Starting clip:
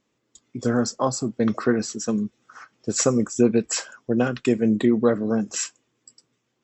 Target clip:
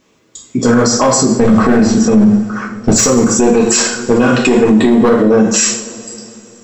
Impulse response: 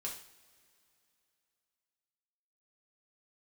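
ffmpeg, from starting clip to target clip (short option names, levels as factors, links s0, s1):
-filter_complex "[0:a]asettb=1/sr,asplit=3[s0][s1][s2];[s0]atrim=end=1.394[s3];[s1]atrim=start=1.39:end=2.92,asetpts=PTS-STARTPTS,afade=t=in:d=0.004:c=qsin,afade=t=out:st=1.526:d=0.004:c=qsin,bass=f=250:g=11,treble=f=4000:g=-11[s4];[s2]atrim=start=2.916[s5];[s3][s4]acrossfade=d=0.004:c1=hsin:c2=qsin[s6];[s6][s5]acrossfade=d=0.004:c1=qsin:c2=hsin,aeval=exprs='clip(val(0),-1,0.168)':c=same[s7];[1:a]atrim=start_sample=2205[s8];[s7][s8]afir=irnorm=-1:irlink=0,alimiter=level_in=11.9:limit=0.891:release=50:level=0:latency=1,volume=0.891"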